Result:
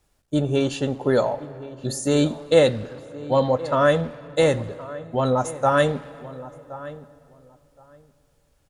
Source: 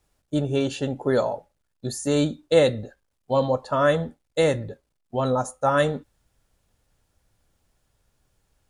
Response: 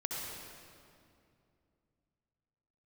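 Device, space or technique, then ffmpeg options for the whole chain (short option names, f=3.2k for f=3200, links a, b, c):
saturated reverb return: -filter_complex "[0:a]asplit=2[a][b];[b]adelay=1070,lowpass=f=1.6k:p=1,volume=-16.5dB,asplit=2[c][d];[d]adelay=1070,lowpass=f=1.6k:p=1,volume=0.17[e];[a][c][e]amix=inputs=3:normalize=0,asplit=2[f][g];[1:a]atrim=start_sample=2205[h];[g][h]afir=irnorm=-1:irlink=0,asoftclip=type=tanh:threshold=-22dB,volume=-15.5dB[i];[f][i]amix=inputs=2:normalize=0,volume=1.5dB"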